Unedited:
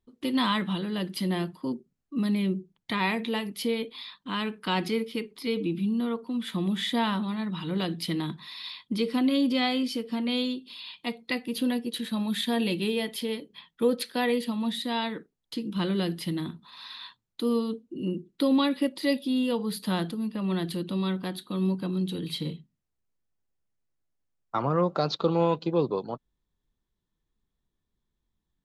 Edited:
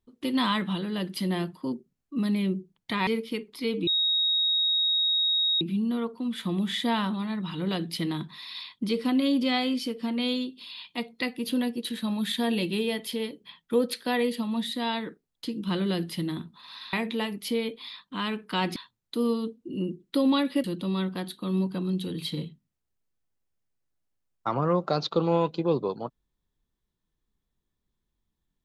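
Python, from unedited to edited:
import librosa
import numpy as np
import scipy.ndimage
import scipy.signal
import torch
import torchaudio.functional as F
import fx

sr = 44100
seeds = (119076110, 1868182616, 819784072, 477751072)

y = fx.edit(x, sr, fx.move(start_s=3.07, length_s=1.83, to_s=17.02),
    fx.insert_tone(at_s=5.7, length_s=1.74, hz=3770.0, db=-21.5),
    fx.cut(start_s=18.9, length_s=1.82), tone=tone)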